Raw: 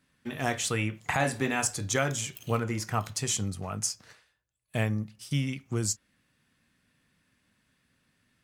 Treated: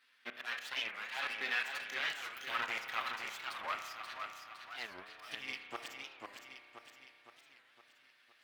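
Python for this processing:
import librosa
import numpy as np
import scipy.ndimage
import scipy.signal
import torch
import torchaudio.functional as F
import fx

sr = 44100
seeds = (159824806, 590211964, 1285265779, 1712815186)

p1 = fx.lower_of_two(x, sr, delay_ms=7.7)
p2 = fx.highpass(p1, sr, hz=870.0, slope=6)
p3 = np.diff(p2, prepend=0.0)
p4 = fx.auto_swell(p3, sr, attack_ms=254.0)
p5 = fx.over_compress(p4, sr, threshold_db=-54.0, ratio=-0.5)
p6 = p4 + (p5 * 10.0 ** (-3.0 / 20.0))
p7 = fx.transient(p6, sr, attack_db=1, sustain_db=-11)
p8 = fx.air_absorb(p7, sr, metres=360.0)
p9 = fx.echo_feedback(p8, sr, ms=512, feedback_pct=52, wet_db=-5.5)
p10 = fx.rev_spring(p9, sr, rt60_s=2.5, pass_ms=(32,), chirp_ms=60, drr_db=7.0)
p11 = fx.record_warp(p10, sr, rpm=45.0, depth_cents=250.0)
y = p11 * 10.0 ** (15.0 / 20.0)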